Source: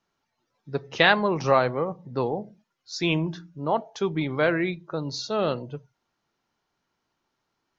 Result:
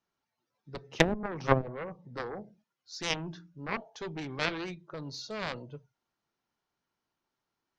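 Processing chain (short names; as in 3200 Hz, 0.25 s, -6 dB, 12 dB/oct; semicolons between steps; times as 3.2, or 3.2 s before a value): added harmonics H 4 -38 dB, 7 -14 dB, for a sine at -3 dBFS; treble ducked by the level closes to 360 Hz, closed at -17.5 dBFS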